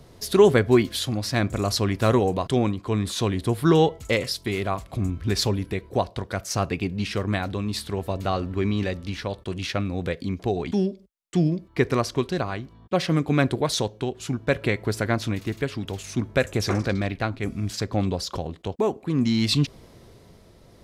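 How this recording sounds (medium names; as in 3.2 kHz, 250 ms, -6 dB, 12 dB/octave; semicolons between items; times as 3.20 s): tremolo triangle 0.62 Hz, depth 45%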